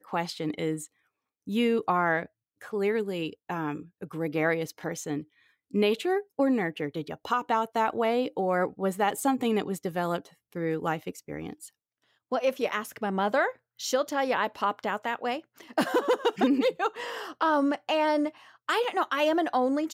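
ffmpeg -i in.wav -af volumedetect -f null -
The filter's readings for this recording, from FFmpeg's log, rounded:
mean_volume: -28.7 dB
max_volume: -13.0 dB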